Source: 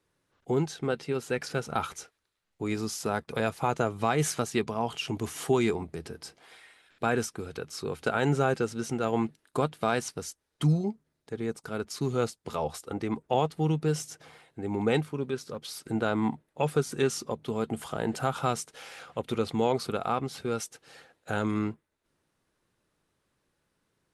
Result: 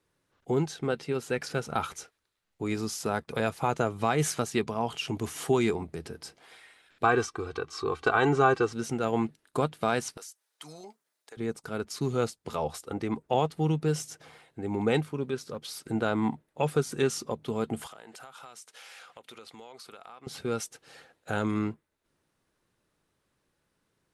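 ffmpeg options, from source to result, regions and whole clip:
ffmpeg -i in.wav -filter_complex "[0:a]asettb=1/sr,asplit=3[link_01][link_02][link_03];[link_01]atrim=end=7.044[link_04];[link_02]atrim=start=7.04:end=8.73,asetpts=PTS-STARTPTS,afade=type=in:duration=0.004:curve=qsin,afade=type=out:start_time=1.686:duration=0.004:curve=qsin,lowpass=5900,equalizer=frequency=1100:width_type=o:width=0.45:gain=11.5,aecho=1:1:2.6:0.66,atrim=end_sample=74529[link_05];[link_03]atrim=start=8.726[link_06];[link_04][link_05]acrossfade=duration=0.004:curve1=hsin:curve2=qsin[link_07];[link_07][link_06]acrossfade=duration=0.004:curve1=qsin:curve2=hsin,asettb=1/sr,asplit=3[link_08][link_09][link_10];[link_08]atrim=end=10.174[link_11];[link_09]atrim=start=10.17:end=11.37,asetpts=PTS-STARTPTS,afade=type=in:duration=0.004:curve=qsin,afade=type=out:start_time=1.196:duration=0.004:curve=qsin,highpass=690,highshelf=frequency=5600:gain=8.5,acompressor=threshold=-41dB:ratio=10:attack=3.2:release=140:knee=1:detection=peak[link_12];[link_10]atrim=start=11.366[link_13];[link_11][link_12]acrossfade=duration=0.004:curve1=hsin:curve2=qsin[link_14];[link_14][link_13]acrossfade=duration=0.004:curve1=qsin:curve2=hsin,asettb=1/sr,asplit=3[link_15][link_16][link_17];[link_15]atrim=end=17.874[link_18];[link_16]atrim=start=17.87:end=20.27,asetpts=PTS-STARTPTS,afade=type=in:duration=0.004:curve=qsin,afade=type=out:start_time=2.396:duration=0.004:curve=qsin,highpass=frequency=1200:poles=1,acompressor=threshold=-44dB:ratio=6:attack=3.2:release=140:knee=1:detection=peak[link_19];[link_17]atrim=start=20.266[link_20];[link_18][link_19]acrossfade=duration=0.004:curve1=hsin:curve2=qsin[link_21];[link_21][link_20]acrossfade=duration=0.004:curve1=qsin:curve2=hsin" out.wav

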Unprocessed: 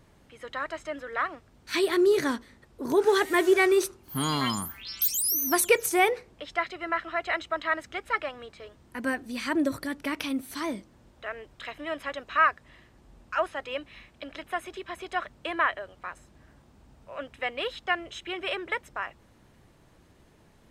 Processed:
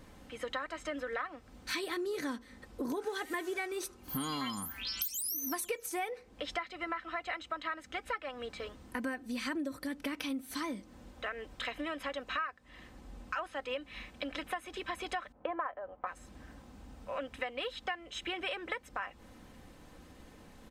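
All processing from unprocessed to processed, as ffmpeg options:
ffmpeg -i in.wav -filter_complex "[0:a]asettb=1/sr,asplit=3[link_01][link_02][link_03];[link_01]atrim=end=15.324[link_04];[link_02]atrim=start=15.32:end=16.07,asetpts=PTS-STARTPTS,afade=type=in:duration=0.004:curve=qsin,afade=type=out:start_time=0.746:duration=0.004:curve=qsin,lowpass=1400,agate=range=-33dB:threshold=-51dB:ratio=3:release=100:detection=peak,equalizer=frequency=740:width=0.7:gain=10.5[link_05];[link_03]atrim=start=16.066[link_06];[link_04][link_05]acrossfade=duration=0.004:curve1=hsin:curve2=qsin[link_07];[link_07][link_06]acrossfade=duration=0.004:curve1=qsin:curve2=hsin,aecho=1:1:3.9:0.48,acompressor=threshold=-38dB:ratio=8,volume=3.5dB" out.wav

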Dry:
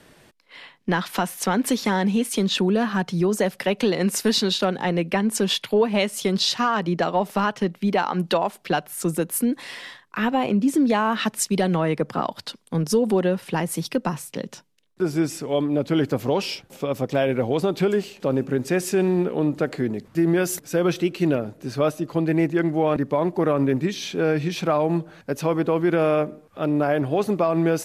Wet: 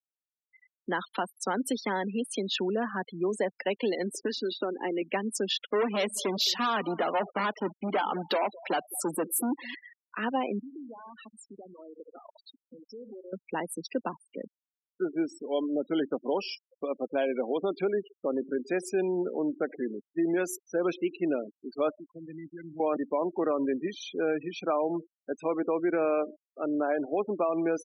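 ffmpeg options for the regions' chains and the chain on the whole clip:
ffmpeg -i in.wav -filter_complex "[0:a]asettb=1/sr,asplit=3[link_01][link_02][link_03];[link_01]atrim=end=4.104[link_04];[link_02]atrim=start=4.1:end=5.02,asetpts=PTS-STARTPTS,afade=type=in:duration=0.004:curve=qsin,afade=type=out:start_time=0.916:duration=0.004:curve=qsin,equalizer=frequency=340:width=2:gain=11,acrossover=split=1100|2200|7000[link_05][link_06][link_07][link_08];[link_05]acompressor=threshold=-23dB:ratio=3[link_09];[link_06]acompressor=threshold=-33dB:ratio=3[link_10];[link_07]acompressor=threshold=-35dB:ratio=3[link_11];[link_08]acompressor=threshold=-33dB:ratio=3[link_12];[link_09][link_10][link_11][link_12]amix=inputs=4:normalize=0[link_13];[link_03]atrim=start=5.016[link_14];[link_04][link_13]acrossfade=duration=0.004:curve1=hsin:curve2=qsin[link_15];[link_15][link_14]acrossfade=duration=0.004:curve1=qsin:curve2=hsin,asettb=1/sr,asplit=3[link_16][link_17][link_18];[link_16]atrim=end=5.674[link_19];[link_17]atrim=start=5.67:end=9.75,asetpts=PTS-STARTPTS,afade=type=in:duration=0.004:curve=qsin,afade=type=out:start_time=4.076:duration=0.004:curve=qsin,acontrast=42,volume=17dB,asoftclip=hard,volume=-17dB,aecho=1:1:213|426|639:0.112|0.0426|0.0162,atrim=end_sample=179928[link_20];[link_18]atrim=start=9.746[link_21];[link_19][link_20]acrossfade=duration=0.004:curve1=hsin:curve2=qsin[link_22];[link_22][link_21]acrossfade=duration=0.004:curve1=qsin:curve2=hsin,asettb=1/sr,asplit=3[link_23][link_24][link_25];[link_23]atrim=end=10.594[link_26];[link_24]atrim=start=10.59:end=13.33,asetpts=PTS-STARTPTS,afade=type=in:duration=0.004:curve=qsin,afade=type=out:start_time=2.736:duration=0.004:curve=qsin,asplit=2[link_27][link_28];[link_28]adelay=69,lowpass=frequency=2100:poles=1,volume=-14dB,asplit=2[link_29][link_30];[link_30]adelay=69,lowpass=frequency=2100:poles=1,volume=0.55,asplit=2[link_31][link_32];[link_32]adelay=69,lowpass=frequency=2100:poles=1,volume=0.55,asplit=2[link_33][link_34];[link_34]adelay=69,lowpass=frequency=2100:poles=1,volume=0.55,asplit=2[link_35][link_36];[link_36]adelay=69,lowpass=frequency=2100:poles=1,volume=0.55,asplit=2[link_37][link_38];[link_38]adelay=69,lowpass=frequency=2100:poles=1,volume=0.55[link_39];[link_27][link_29][link_31][link_33][link_35][link_37][link_39]amix=inputs=7:normalize=0,atrim=end_sample=120834,acompressor=threshold=-33dB:ratio=8:attack=3.2:release=140:knee=1:detection=peak[link_40];[link_25]atrim=start=13.326[link_41];[link_26][link_40]acrossfade=duration=0.004:curve1=hsin:curve2=qsin[link_42];[link_42][link_41]acrossfade=duration=0.004:curve1=qsin:curve2=hsin,asettb=1/sr,asplit=3[link_43][link_44][link_45];[link_43]atrim=end=21.974[link_46];[link_44]atrim=start=21.97:end=22.8,asetpts=PTS-STARTPTS,afade=type=in:duration=0.004:curve=qsin,afade=type=out:start_time=0.826:duration=0.004:curve=qsin,asubboost=boost=10.5:cutoff=180,acrossover=split=160|3000[link_47][link_48][link_49];[link_48]acompressor=threshold=-40dB:ratio=3:attack=3.2:release=140:knee=2.83:detection=peak[link_50];[link_47][link_50][link_49]amix=inputs=3:normalize=0[link_51];[link_45]atrim=start=22.796[link_52];[link_46][link_51]acrossfade=duration=0.004:curve1=hsin:curve2=qsin[link_53];[link_53][link_52]acrossfade=duration=0.004:curve1=qsin:curve2=hsin,highpass=frequency=240:width=0.5412,highpass=frequency=240:width=1.3066,afftfilt=real='re*gte(hypot(re,im),0.0501)':imag='im*gte(hypot(re,im),0.0501)':win_size=1024:overlap=0.75,volume=-6.5dB" out.wav

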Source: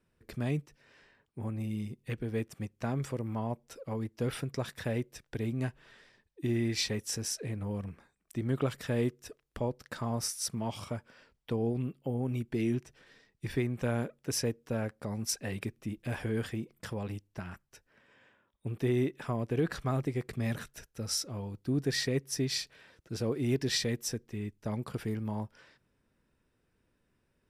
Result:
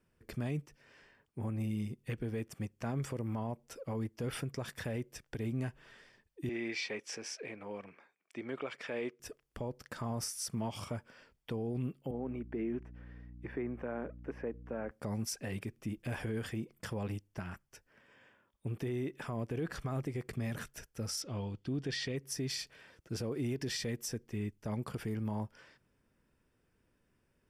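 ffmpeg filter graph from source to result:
ffmpeg -i in.wav -filter_complex "[0:a]asettb=1/sr,asplit=3[link_01][link_02][link_03];[link_01]atrim=end=6.494[link_04];[link_02]atrim=start=6.49:end=9.2,asetpts=PTS-STARTPTS,afade=type=in:duration=0.004:curve=qsin,afade=type=out:start_time=2.706:duration=0.004:curve=qsin,highpass=400,lowpass=4100,equalizer=frequency=2300:width_type=o:width=0.2:gain=8.5[link_05];[link_03]atrim=start=9.196[link_06];[link_04][link_05]acrossfade=duration=0.004:curve1=hsin:curve2=qsin[link_07];[link_07][link_06]acrossfade=duration=0.004:curve1=qsin:curve2=hsin,asettb=1/sr,asplit=3[link_08][link_09][link_10];[link_08]atrim=end=12.114[link_11];[link_09]atrim=start=12.11:end=14.91,asetpts=PTS-STARTPTS,afade=type=in:duration=0.004:curve=qsin,afade=type=out:start_time=2.796:duration=0.004:curve=qsin,acrossover=split=2700[link_12][link_13];[link_13]acompressor=threshold=-57dB:ratio=4:attack=1:release=60[link_14];[link_12][link_14]amix=inputs=2:normalize=0,acrossover=split=210 2300:gain=0.0891 1 0.0708[link_15][link_16][link_17];[link_15][link_16][link_17]amix=inputs=3:normalize=0,aeval=exprs='val(0)+0.00355*(sin(2*PI*60*n/s)+sin(2*PI*2*60*n/s)/2+sin(2*PI*3*60*n/s)/3+sin(2*PI*4*60*n/s)/4+sin(2*PI*5*60*n/s)/5)':channel_layout=same[link_18];[link_10]atrim=start=14.906[link_19];[link_11][link_18]acrossfade=duration=0.004:curve1=hsin:curve2=qsin[link_20];[link_20][link_19]acrossfade=duration=0.004:curve1=qsin:curve2=hsin,asettb=1/sr,asplit=3[link_21][link_22][link_23];[link_21]atrim=end=21.224[link_24];[link_22]atrim=start=21.22:end=22.16,asetpts=PTS-STARTPTS,afade=type=in:duration=0.004:curve=qsin,afade=type=out:start_time=0.936:duration=0.004:curve=qsin,lowpass=6300,equalizer=frequency=3200:width=2.1:gain=9[link_25];[link_23]atrim=start=22.156[link_26];[link_24][link_25]acrossfade=duration=0.004:curve1=hsin:curve2=qsin[link_27];[link_27][link_26]acrossfade=duration=0.004:curve1=qsin:curve2=hsin,bandreject=frequency=3900:width=8.7,alimiter=level_in=4.5dB:limit=-24dB:level=0:latency=1:release=77,volume=-4.5dB" out.wav

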